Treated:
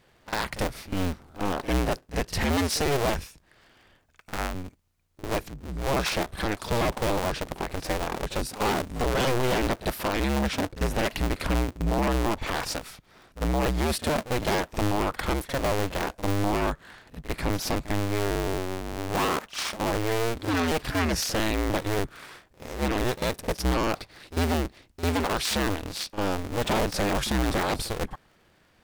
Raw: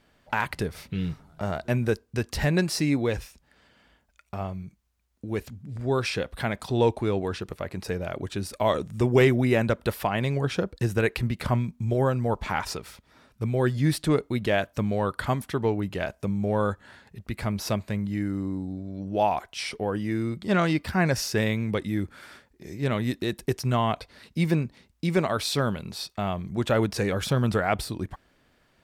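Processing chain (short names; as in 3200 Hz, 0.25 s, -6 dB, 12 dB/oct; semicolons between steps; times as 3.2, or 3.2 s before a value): cycle switcher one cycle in 2, inverted; in parallel at 0 dB: limiter -18.5 dBFS, peak gain reduction 8.5 dB; on the sum: wavefolder -15 dBFS; pre-echo 48 ms -14.5 dB; gain -4 dB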